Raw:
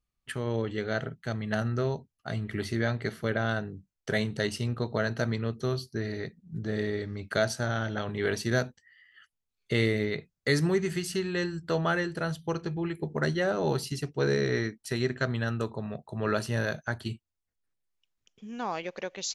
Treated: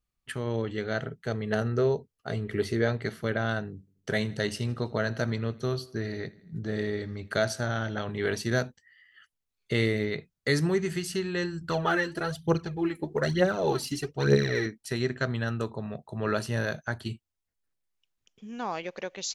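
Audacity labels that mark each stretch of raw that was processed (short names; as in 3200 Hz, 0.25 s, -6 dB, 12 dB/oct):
1.110000	2.970000	bell 440 Hz +11 dB 0.41 oct
3.710000	7.610000	feedback echo 81 ms, feedback 58%, level -22 dB
11.610000	14.660000	phaser 1.1 Hz, delay 4 ms, feedback 63%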